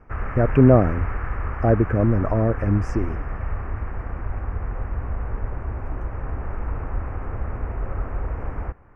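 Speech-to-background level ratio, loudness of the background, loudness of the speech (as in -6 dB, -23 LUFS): 10.5 dB, -31.0 LUFS, -20.5 LUFS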